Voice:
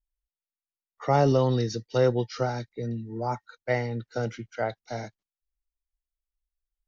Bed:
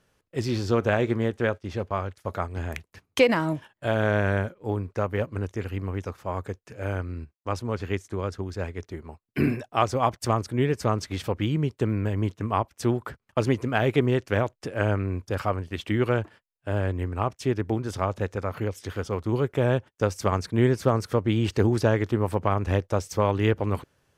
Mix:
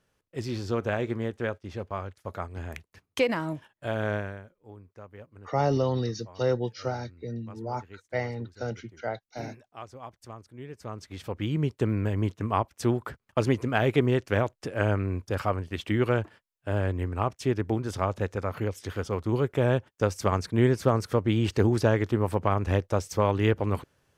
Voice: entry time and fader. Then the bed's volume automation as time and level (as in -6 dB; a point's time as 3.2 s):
4.45 s, -3.5 dB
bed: 4.14 s -5.5 dB
4.42 s -19.5 dB
10.57 s -19.5 dB
11.63 s -1 dB